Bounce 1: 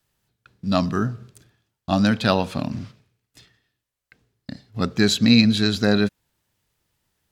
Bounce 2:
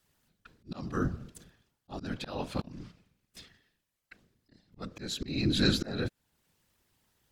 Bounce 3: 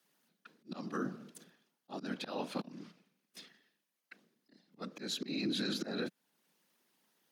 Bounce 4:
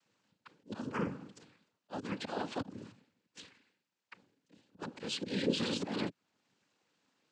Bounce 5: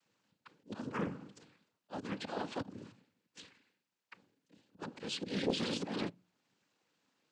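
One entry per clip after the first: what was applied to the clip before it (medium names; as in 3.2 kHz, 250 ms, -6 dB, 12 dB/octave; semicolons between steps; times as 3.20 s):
whisper effect; peak limiter -9 dBFS, peak gain reduction 7 dB; slow attack 668 ms
steep high-pass 180 Hz 36 dB/octave; band-stop 7.6 kHz, Q 9.1; peak limiter -25.5 dBFS, peak gain reduction 11 dB; trim -1.5 dB
noise-vocoded speech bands 8; distance through air 56 m; trim +2.5 dB
on a send at -23.5 dB: reverberation RT60 0.35 s, pre-delay 6 ms; on the sum: loudspeaker Doppler distortion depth 0.56 ms; trim -1.5 dB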